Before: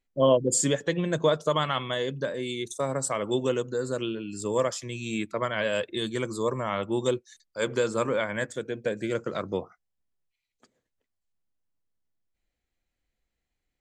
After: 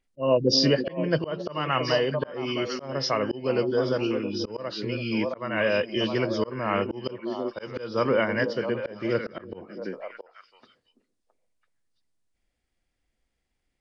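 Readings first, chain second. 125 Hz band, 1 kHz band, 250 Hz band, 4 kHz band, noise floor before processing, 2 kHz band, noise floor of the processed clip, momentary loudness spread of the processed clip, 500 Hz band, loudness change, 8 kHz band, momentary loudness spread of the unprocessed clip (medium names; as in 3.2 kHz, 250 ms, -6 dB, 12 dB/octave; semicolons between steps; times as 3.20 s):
+1.5 dB, +0.5 dB, +3.0 dB, +4.5 dB, -84 dBFS, +2.5 dB, -78 dBFS, 10 LU, +1.0 dB, +1.5 dB, under -10 dB, 8 LU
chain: knee-point frequency compression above 2.2 kHz 1.5:1; repeats whose band climbs or falls 333 ms, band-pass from 270 Hz, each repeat 1.4 oct, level -4 dB; slow attack 278 ms; trim +4 dB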